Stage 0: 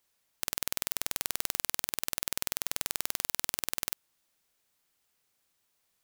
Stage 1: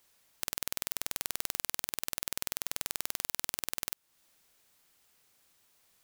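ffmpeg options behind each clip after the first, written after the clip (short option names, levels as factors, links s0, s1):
-af "acompressor=threshold=0.00708:ratio=2,volume=2.37"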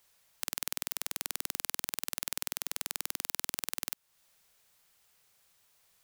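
-af "equalizer=f=290:t=o:w=0.58:g=-10"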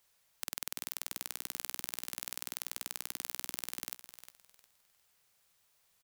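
-af "aecho=1:1:356|712|1068:0.211|0.0528|0.0132,volume=0.631"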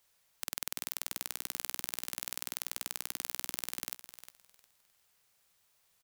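-af "acrusher=bits=3:mode=log:mix=0:aa=0.000001"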